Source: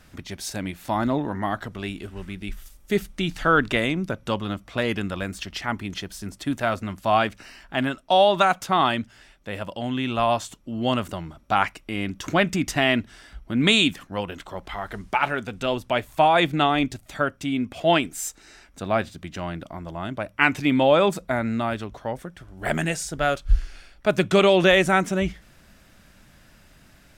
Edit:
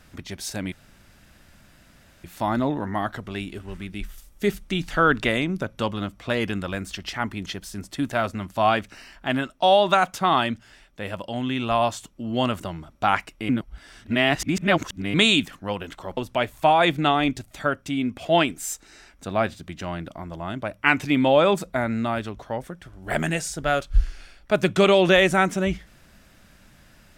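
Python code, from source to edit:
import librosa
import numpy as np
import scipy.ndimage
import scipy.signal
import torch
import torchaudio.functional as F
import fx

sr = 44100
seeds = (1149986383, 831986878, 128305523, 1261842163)

y = fx.edit(x, sr, fx.insert_room_tone(at_s=0.72, length_s=1.52),
    fx.reverse_span(start_s=11.97, length_s=1.65),
    fx.cut(start_s=14.65, length_s=1.07), tone=tone)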